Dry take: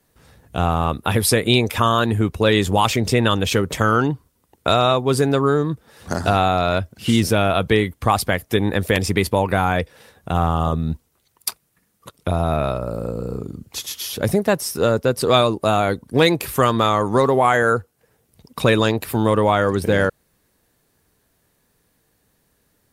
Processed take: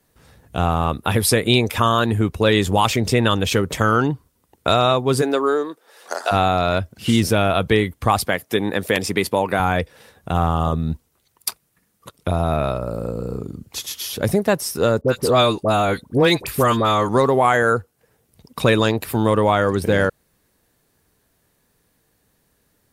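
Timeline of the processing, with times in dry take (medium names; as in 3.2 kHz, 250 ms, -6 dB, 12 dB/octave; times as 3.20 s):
5.21–6.31 s: high-pass 250 Hz -> 520 Hz 24 dB/octave
8.25–9.60 s: Bessel high-pass 190 Hz
15.01–17.09 s: phase dispersion highs, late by 57 ms, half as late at 1.2 kHz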